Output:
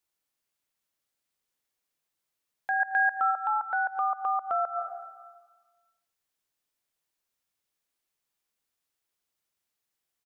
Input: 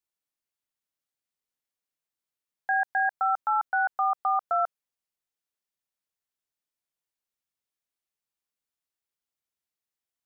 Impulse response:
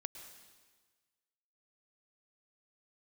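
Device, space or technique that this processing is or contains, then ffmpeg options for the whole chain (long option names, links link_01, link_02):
ducked reverb: -filter_complex "[0:a]asplit=3[link_01][link_02][link_03];[1:a]atrim=start_sample=2205[link_04];[link_02][link_04]afir=irnorm=-1:irlink=0[link_05];[link_03]apad=whole_len=452118[link_06];[link_05][link_06]sidechaincompress=threshold=-44dB:ratio=12:attack=7.1:release=103,volume=10dB[link_07];[link_01][link_07]amix=inputs=2:normalize=0,bandreject=frequency=60:width_type=h:width=6,bandreject=frequency=120:width_type=h:width=6,bandreject=frequency=180:width_type=h:width=6,bandreject=frequency=240:width_type=h:width=6,asettb=1/sr,asplit=3[link_08][link_09][link_10];[link_08]atrim=end=2.804[link_11];[link_09]atrim=start=2.8:end=3.31,asetpts=PTS-STARTPTS,afade=type=in:duration=0.004:curve=qsin,afade=type=out:start_time=0.506:duration=0.004:curve=qsin,equalizer=frequency=1600:width=1.5:gain=5[link_12];[link_10]atrim=start=3.306[link_13];[link_11][link_12]acrossfade=duration=0.004:curve1=hsin:curve2=qsin[link_14];[link_14][link_13]acrossfade=duration=0.004:curve1=qsin:curve2=hsin,aecho=1:1:112|224|336|448:0.119|0.0547|0.0251|0.0116,volume=-4dB"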